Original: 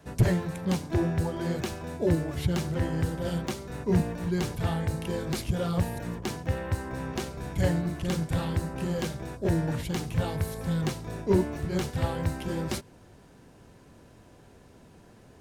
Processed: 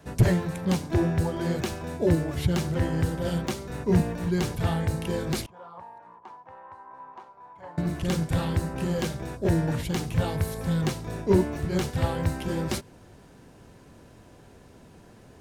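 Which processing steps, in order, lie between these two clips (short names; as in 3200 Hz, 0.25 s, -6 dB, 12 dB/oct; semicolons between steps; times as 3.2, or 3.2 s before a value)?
5.46–7.78 band-pass 960 Hz, Q 6.5; gain +2.5 dB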